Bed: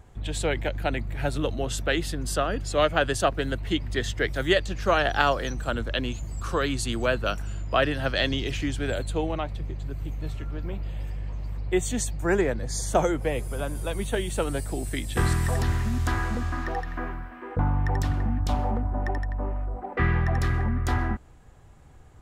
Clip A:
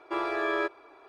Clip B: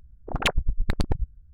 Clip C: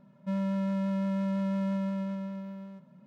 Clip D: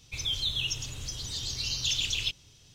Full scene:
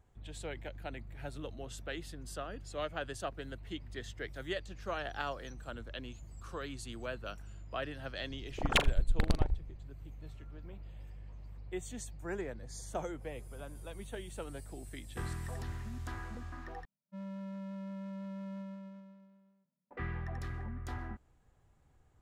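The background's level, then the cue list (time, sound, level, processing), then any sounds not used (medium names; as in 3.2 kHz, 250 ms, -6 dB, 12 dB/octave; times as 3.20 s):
bed -16 dB
8.30 s: add B -4.5 dB + flutter echo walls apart 7 m, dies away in 0.23 s
16.85 s: replace with C -13 dB + three bands expanded up and down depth 100%
not used: A, D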